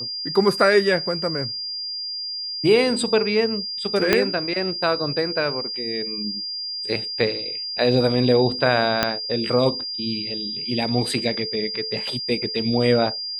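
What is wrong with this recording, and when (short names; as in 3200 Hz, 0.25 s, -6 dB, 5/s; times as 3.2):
tone 4800 Hz -27 dBFS
4.13 pop -2 dBFS
9.03 pop -2 dBFS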